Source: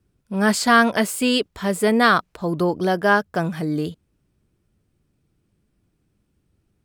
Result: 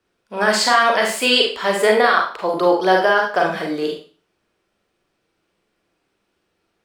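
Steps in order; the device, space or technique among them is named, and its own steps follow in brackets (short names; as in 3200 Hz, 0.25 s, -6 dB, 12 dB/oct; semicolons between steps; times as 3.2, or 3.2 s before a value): DJ mixer with the lows and highs turned down (three-band isolator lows -23 dB, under 410 Hz, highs -12 dB, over 5600 Hz; limiter -14 dBFS, peak gain reduction 11.5 dB); Schroeder reverb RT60 0.4 s, combs from 33 ms, DRR 0 dB; gain +7 dB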